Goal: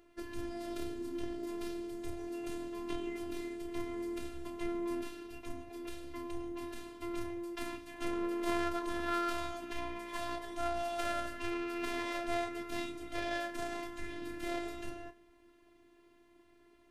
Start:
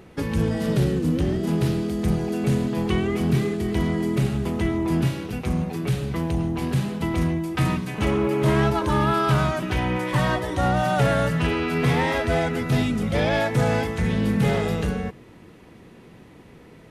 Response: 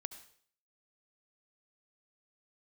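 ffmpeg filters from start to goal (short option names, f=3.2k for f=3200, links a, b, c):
-filter_complex "[0:a]asplit=2[a][b];[1:a]atrim=start_sample=2205,adelay=31[c];[b][c]afir=irnorm=-1:irlink=0,volume=-6.5dB[d];[a][d]amix=inputs=2:normalize=0,afftfilt=real='hypot(re,im)*cos(PI*b)':imag='0':win_size=512:overlap=0.75,aeval=exprs='0.335*(cos(1*acos(clip(val(0)/0.335,-1,1)))-cos(1*PI/2))+0.0473*(cos(3*acos(clip(val(0)/0.335,-1,1)))-cos(3*PI/2))':c=same,volume=-8dB"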